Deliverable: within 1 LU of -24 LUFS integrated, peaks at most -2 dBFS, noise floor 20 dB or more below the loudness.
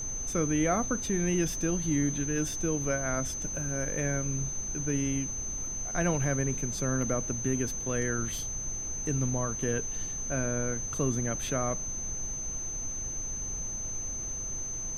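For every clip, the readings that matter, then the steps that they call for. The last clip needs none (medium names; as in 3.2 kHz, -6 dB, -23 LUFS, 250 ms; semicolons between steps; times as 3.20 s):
steady tone 6.2 kHz; tone level -34 dBFS; noise floor -36 dBFS; noise floor target -51 dBFS; loudness -30.5 LUFS; peak level -14.5 dBFS; loudness target -24.0 LUFS
-> band-stop 6.2 kHz, Q 30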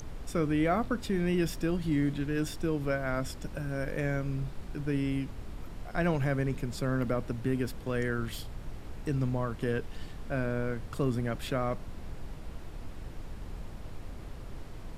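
steady tone not found; noise floor -44 dBFS; noise floor target -53 dBFS
-> noise print and reduce 9 dB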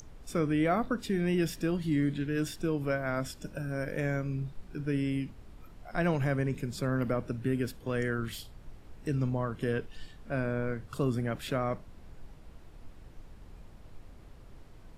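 noise floor -52 dBFS; noise floor target -53 dBFS
-> noise print and reduce 6 dB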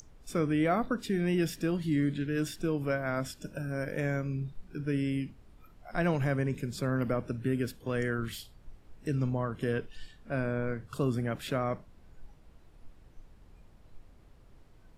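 noise floor -57 dBFS; loudness -32.5 LUFS; peak level -16.0 dBFS; loudness target -24.0 LUFS
-> trim +8.5 dB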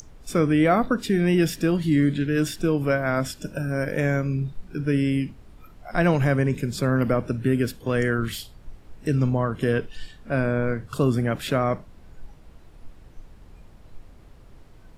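loudness -24.0 LUFS; peak level -7.5 dBFS; noise floor -49 dBFS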